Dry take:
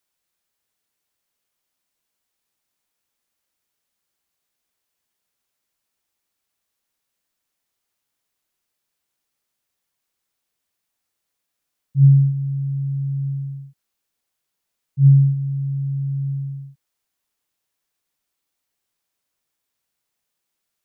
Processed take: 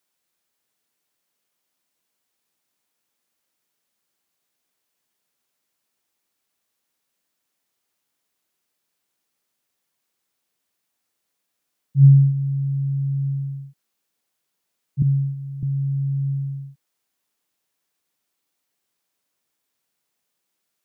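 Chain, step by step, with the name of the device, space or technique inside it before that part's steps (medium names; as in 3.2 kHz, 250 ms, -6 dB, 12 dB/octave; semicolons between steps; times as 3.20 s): filter by subtraction (in parallel: low-pass 220 Hz 12 dB/octave + polarity flip); 15.02–15.63 s: on the sum: high-pass 220 Hz 12 dB/octave; trim +1.5 dB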